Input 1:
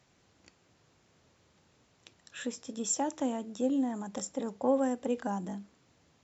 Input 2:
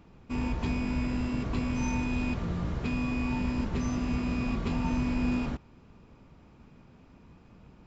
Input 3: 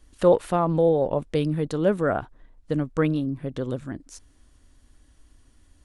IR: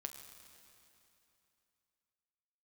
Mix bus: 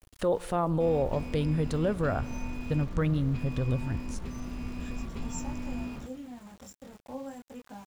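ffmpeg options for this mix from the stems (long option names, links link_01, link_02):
-filter_complex "[0:a]adynamicequalizer=threshold=0.00316:dfrequency=150:dqfactor=1.7:tfrequency=150:tqfactor=1.7:attack=5:release=100:ratio=0.375:range=3:mode=cutabove:tftype=bell,flanger=delay=18:depth=7.4:speed=0.36,adelay=2450,volume=-8.5dB,asplit=2[link_01][link_02];[link_02]volume=-16.5dB[link_03];[1:a]adelay=500,volume=-11dB,asplit=2[link_04][link_05];[link_05]volume=-5.5dB[link_06];[2:a]volume=-4dB,asplit=2[link_07][link_08];[link_08]volume=-11dB[link_09];[link_01][link_07]amix=inputs=2:normalize=0,asubboost=boost=10.5:cutoff=110,alimiter=limit=-21dB:level=0:latency=1:release=106,volume=0dB[link_10];[3:a]atrim=start_sample=2205[link_11];[link_03][link_06][link_09]amix=inputs=3:normalize=0[link_12];[link_12][link_11]afir=irnorm=-1:irlink=0[link_13];[link_04][link_10][link_13]amix=inputs=3:normalize=0,aeval=exprs='val(0)*gte(abs(val(0)),0.00316)':channel_layout=same"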